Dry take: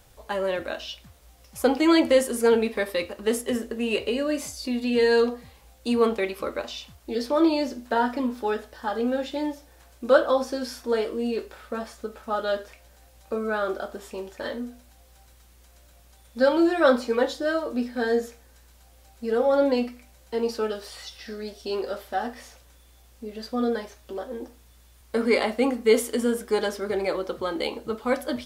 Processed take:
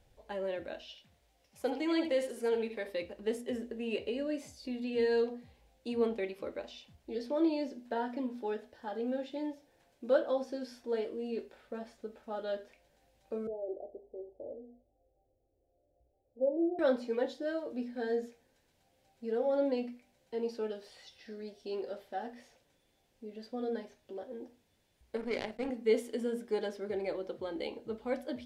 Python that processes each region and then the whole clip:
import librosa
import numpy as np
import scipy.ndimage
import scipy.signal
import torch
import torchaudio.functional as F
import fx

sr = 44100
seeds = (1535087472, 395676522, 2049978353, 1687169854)

y = fx.chain(x, sr, fx.low_shelf(hz=350.0, db=-9.0),
    fx.echo_single(ms=76, db=-8.5), at=(0.82, 2.87))
y = fx.chain(y, sr, fx.steep_lowpass(hz=830.0, slope=72),
    fx.fixed_phaser(hz=460.0, stages=4), at=(13.47, 16.79))
y = fx.chain(y, sr, fx.power_curve(exponent=2.0),
    fx.env_flatten(amount_pct=50), at=(25.16, 25.7))
y = fx.lowpass(y, sr, hz=2400.0, slope=6)
y = fx.peak_eq(y, sr, hz=1200.0, db=-11.0, octaves=0.63)
y = fx.hum_notches(y, sr, base_hz=60, count=4)
y = y * 10.0 ** (-8.5 / 20.0)